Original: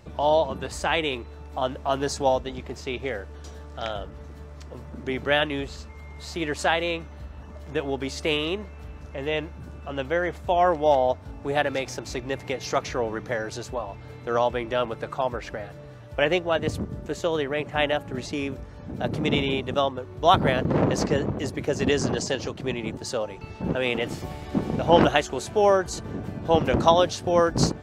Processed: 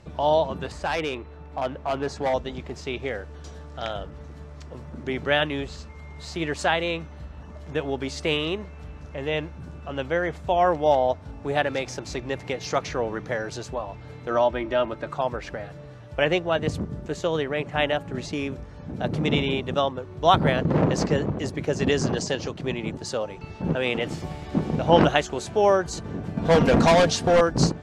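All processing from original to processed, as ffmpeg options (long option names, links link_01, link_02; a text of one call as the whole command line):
ffmpeg -i in.wav -filter_complex "[0:a]asettb=1/sr,asplit=3[link_01][link_02][link_03];[link_01]atrim=end=0.724[link_04];[link_02]atrim=start=0.72:end=2.34,asetpts=PTS-STARTPTS,afade=type=in:duration=0.004:curve=qsin,afade=type=out:start_time=1.616:duration=0.004:curve=qsin,bass=frequency=250:gain=-2,treble=frequency=4000:gain=-12,asoftclip=type=hard:threshold=-20dB[link_05];[link_03]atrim=start=2.336[link_06];[link_04][link_05]acrossfade=duration=0.004:curve1=hsin:curve2=qsin[link_07];[link_07][link_06]acrossfade=duration=0.004:curve1=qsin:curve2=hsin,asettb=1/sr,asplit=3[link_08][link_09][link_10];[link_08]atrim=end=14.304[link_11];[link_09]atrim=start=14.3:end=15.07,asetpts=PTS-STARTPTS,afade=type=in:duration=0.004:curve=qsin,afade=type=out:start_time=0.766:duration=0.004:curve=qsin,lowpass=frequency=3700:poles=1,aecho=1:1:3.2:0.55,atrim=end_sample=33957[link_12];[link_10]atrim=start=15.066[link_13];[link_11][link_12]acrossfade=duration=0.004:curve1=hsin:curve2=qsin[link_14];[link_14][link_13]acrossfade=duration=0.004:curve1=qsin:curve2=hsin,asettb=1/sr,asplit=3[link_15][link_16][link_17];[link_15]atrim=end=26.374[link_18];[link_16]atrim=start=26.37:end=27.41,asetpts=PTS-STARTPTS,afade=type=in:duration=0.004:curve=qsin,afade=type=out:start_time=1.036:duration=0.004:curve=qsin,acontrast=65,asoftclip=type=hard:threshold=-14.5dB,aecho=1:1:4.3:0.38,atrim=end_sample=45864[link_19];[link_17]atrim=start=27.406[link_20];[link_18][link_19]acrossfade=duration=0.004:curve1=hsin:curve2=qsin[link_21];[link_21][link_20]acrossfade=duration=0.004:curve1=qsin:curve2=hsin,lowpass=9200,equalizer=frequency=160:width=6.5:gain=6" out.wav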